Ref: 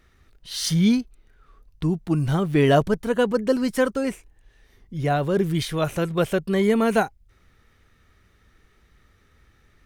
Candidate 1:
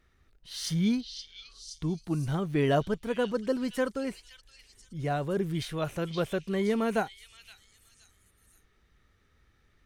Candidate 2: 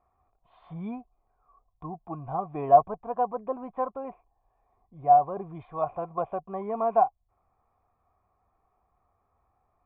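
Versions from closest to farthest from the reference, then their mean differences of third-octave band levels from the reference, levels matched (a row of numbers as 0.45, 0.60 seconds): 1, 2; 1.0, 13.0 decibels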